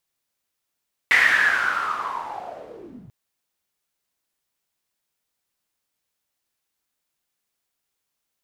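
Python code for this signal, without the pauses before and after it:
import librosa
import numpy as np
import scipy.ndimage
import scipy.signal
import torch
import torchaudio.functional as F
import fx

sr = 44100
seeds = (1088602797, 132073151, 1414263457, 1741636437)

y = fx.riser_noise(sr, seeds[0], length_s=1.99, colour='pink', kind='bandpass', start_hz=2000.0, end_hz=110.0, q=8.9, swell_db=-29.0, law='linear')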